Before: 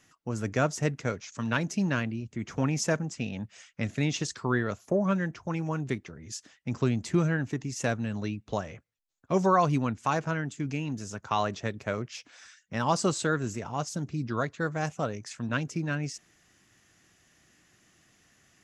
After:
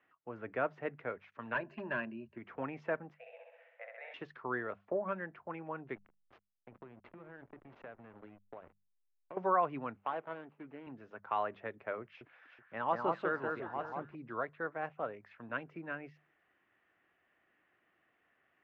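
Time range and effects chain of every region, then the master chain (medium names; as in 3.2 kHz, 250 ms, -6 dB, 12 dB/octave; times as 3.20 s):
1.54–2.38 s: rippled EQ curve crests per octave 1.4, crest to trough 13 dB + hard clipper -20.5 dBFS
3.14–4.14 s: rippled Chebyshev high-pass 480 Hz, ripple 9 dB + tilt shelf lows +6.5 dB, about 1.2 kHz + flutter echo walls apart 11.2 m, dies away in 1.2 s
5.95–9.37 s: hum notches 50/100/150/200/250/300/350 Hz + hysteresis with a dead band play -30 dBFS + compression 16:1, threshold -34 dBFS
9.96–10.87 s: median filter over 25 samples + high-pass 290 Hz 6 dB/octave
12.02–14.15 s: dynamic bell 7 kHz, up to +4 dB, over -49 dBFS, Q 0.92 + echo whose repeats swap between lows and highs 188 ms, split 1.8 kHz, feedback 52%, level -2.5 dB
whole clip: low-pass 3.3 kHz 24 dB/octave; three-band isolator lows -16 dB, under 350 Hz, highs -21 dB, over 2.5 kHz; hum notches 50/100/150/200 Hz; trim -5.5 dB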